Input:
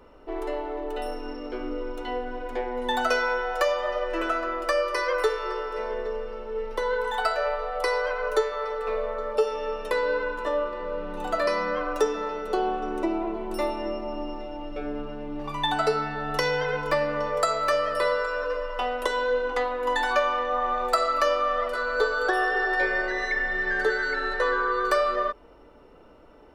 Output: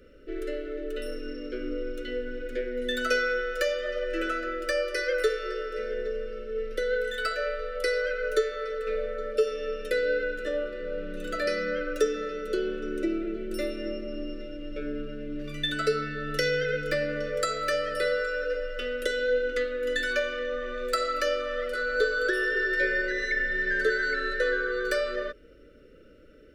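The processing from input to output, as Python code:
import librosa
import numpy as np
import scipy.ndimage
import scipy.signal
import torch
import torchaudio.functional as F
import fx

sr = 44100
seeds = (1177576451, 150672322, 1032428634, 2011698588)

y = scipy.signal.sosfilt(scipy.signal.ellip(3, 1.0, 50, [560.0, 1400.0], 'bandstop', fs=sr, output='sos'), x)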